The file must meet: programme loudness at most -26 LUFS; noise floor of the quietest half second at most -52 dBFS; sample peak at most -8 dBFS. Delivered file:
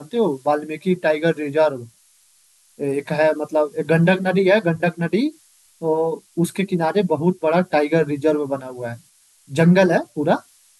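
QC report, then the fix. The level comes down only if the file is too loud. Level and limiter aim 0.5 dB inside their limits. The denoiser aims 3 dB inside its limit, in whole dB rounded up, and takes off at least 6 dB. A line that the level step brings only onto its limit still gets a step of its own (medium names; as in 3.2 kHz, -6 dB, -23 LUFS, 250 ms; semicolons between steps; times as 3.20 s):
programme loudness -19.5 LUFS: fail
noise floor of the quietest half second -57 dBFS: pass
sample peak -4.0 dBFS: fail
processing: trim -7 dB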